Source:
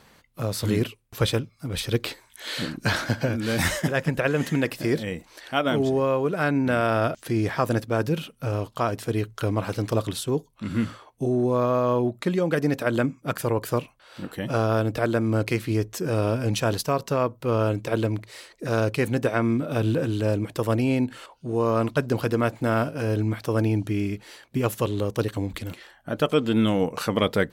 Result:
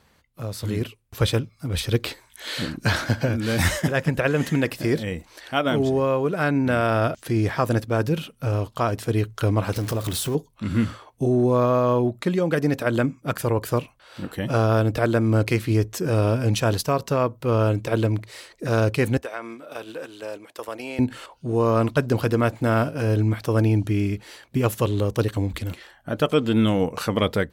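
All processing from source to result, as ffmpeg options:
-filter_complex "[0:a]asettb=1/sr,asplit=3[a][b][c];[a]atrim=end=9.764[d];[b]atrim=start=9.76:end=10.35,asetpts=PTS-STARTPTS,afade=t=in:d=0.004:c=qsin,afade=t=out:st=0.586:d=0.004:c=qsin,aeval=exprs='val(0)+0.5*0.0251*sgn(val(0))':c=same,highshelf=f=8.8k:g=6.5,acompressor=threshold=-27dB:ratio=2.5:attack=3.2:release=140:knee=1:detection=peak[e];[c]atrim=start=10.346[f];[d][e]acrossfade=d=0.004:c1=hsin:c2=qsin[g];[g][f]acrossfade=d=0.004:c1=qsin:c2=hsin,asettb=1/sr,asplit=3[h][i][j];[h]atrim=end=19.174[k];[i]atrim=start=19.17:end=20.99,asetpts=PTS-STARTPTS,afade=t=in:d=0.004:c=qsin,afade=t=out:st=1.816:d=0.004:c=qsin,highpass=550,agate=range=-8dB:threshold=-35dB:ratio=16:release=100:detection=peak,acompressor=threshold=-35dB:ratio=2:attack=3.2:release=140:knee=1:detection=peak[l];[j]atrim=start=20.986[m];[k][l]acrossfade=d=0.004:c1=hsin:c2=qsin[n];[n][m]acrossfade=d=0.004:c1=qsin:c2=hsin,dynaudnorm=f=720:g=3:m=11.5dB,equalizer=f=73:w=1.7:g=8.5,volume=-6dB"

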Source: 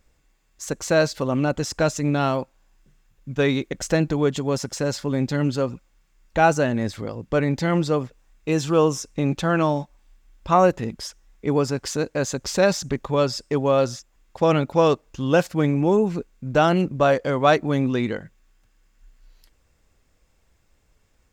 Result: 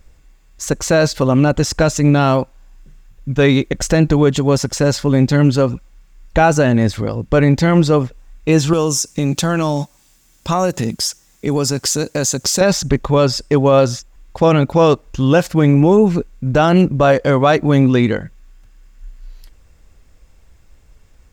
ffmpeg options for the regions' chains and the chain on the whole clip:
-filter_complex "[0:a]asettb=1/sr,asplit=3[a][b][c];[a]atrim=end=8.734[d];[b]atrim=start=8.73:end=12.61,asetpts=PTS-STARTPTS,afade=t=in:d=0.004:c=qsin,afade=t=out:st=3.876:d=0.004:c=qsin,highpass=130,bass=f=250:g=3,treble=f=4k:g=14,acompressor=threshold=-25dB:ratio=2.5:attack=3.2:release=140:knee=1:detection=peak[e];[c]atrim=start=12.606[f];[d][e]acrossfade=d=0.004:c1=hsin:c2=qsin[g];[g][f]acrossfade=d=0.004:c1=qsin:c2=hsin,lowshelf=f=97:g=9.5,alimiter=level_in=9.5dB:limit=-1dB:release=50:level=0:latency=1,volume=-1dB"

